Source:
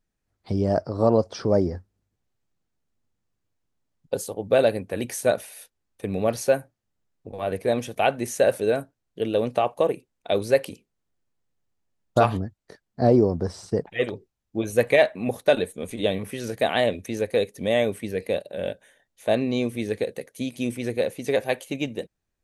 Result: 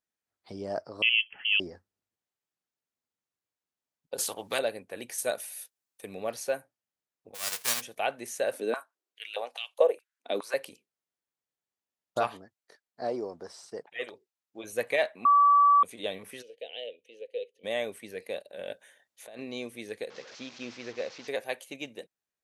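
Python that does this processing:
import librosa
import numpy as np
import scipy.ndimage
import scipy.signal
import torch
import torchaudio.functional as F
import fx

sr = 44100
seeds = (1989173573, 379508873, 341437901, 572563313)

y = fx.freq_invert(x, sr, carrier_hz=3200, at=(1.02, 1.6))
y = fx.spectral_comp(y, sr, ratio=2.0, at=(4.18, 4.59))
y = fx.high_shelf(y, sr, hz=5700.0, db=10.5, at=(5.18, 6.14))
y = fx.envelope_flatten(y, sr, power=0.1, at=(7.34, 7.8), fade=0.02)
y = fx.filter_held_highpass(y, sr, hz=4.8, low_hz=250.0, high_hz=3200.0, at=(8.53, 10.54))
y = fx.low_shelf(y, sr, hz=240.0, db=-11.5, at=(12.27, 14.64))
y = fx.double_bandpass(y, sr, hz=1200.0, octaves=2.6, at=(16.41, 17.63), fade=0.02)
y = fx.over_compress(y, sr, threshold_db=-31.0, ratio=-1.0, at=(18.59, 19.39))
y = fx.delta_mod(y, sr, bps=32000, step_db=-34.0, at=(20.1, 21.28))
y = fx.edit(y, sr, fx.bleep(start_s=15.25, length_s=0.58, hz=1150.0, db=-9.0), tone=tone)
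y = fx.highpass(y, sr, hz=700.0, slope=6)
y = F.gain(torch.from_numpy(y), -6.0).numpy()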